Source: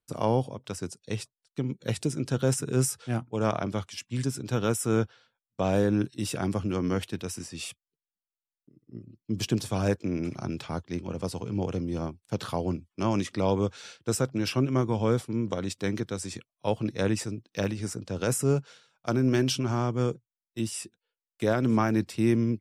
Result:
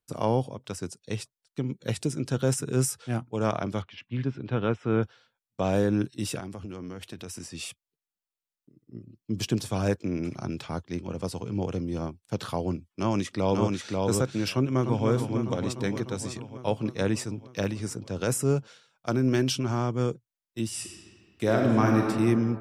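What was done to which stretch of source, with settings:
3.82–5.03 s: low-pass 3.2 kHz 24 dB/octave
6.39–7.45 s: compression 10:1, threshold -34 dBFS
12.90–13.96 s: echo throw 540 ms, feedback 10%, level -2.5 dB
14.53–15.07 s: echo throw 300 ms, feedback 75%, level -6.5 dB
20.66–22.08 s: reverb throw, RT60 2.1 s, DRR 0.5 dB

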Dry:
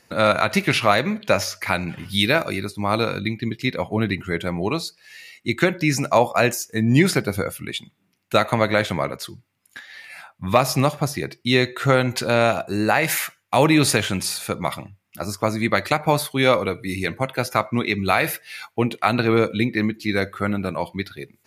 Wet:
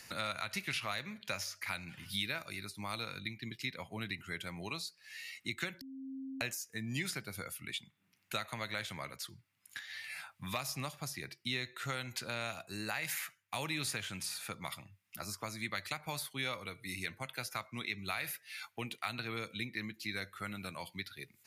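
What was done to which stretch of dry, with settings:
5.81–6.41 s: bleep 267 Hz -23.5 dBFS
whole clip: amplifier tone stack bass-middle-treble 5-5-5; three bands compressed up and down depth 70%; trim -6 dB

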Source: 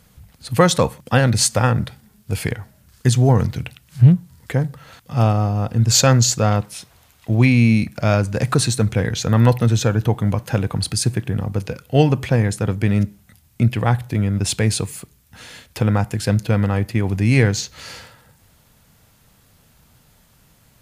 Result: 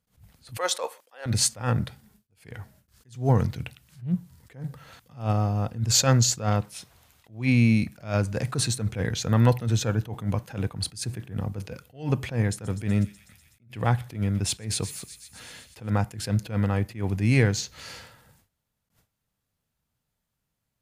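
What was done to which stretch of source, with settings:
0.57–1.26 s: high-pass 460 Hz 24 dB/octave
12.46–15.90 s: feedback echo behind a high-pass 124 ms, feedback 75%, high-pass 3.3 kHz, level -11.5 dB
whole clip: gate with hold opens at -42 dBFS; attacks held to a fixed rise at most 170 dB/s; trim -5.5 dB

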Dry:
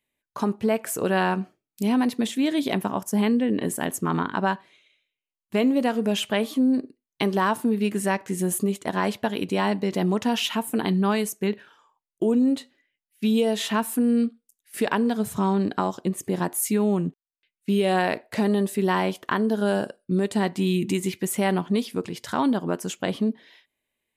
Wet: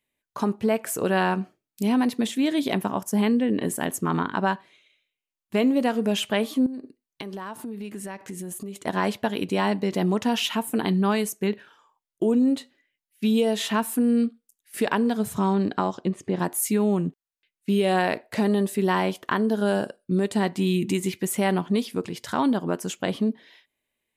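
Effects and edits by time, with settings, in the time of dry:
6.66–8.76 s: compression, threshold -32 dBFS
15.54–16.38 s: low-pass 9 kHz -> 3.8 kHz

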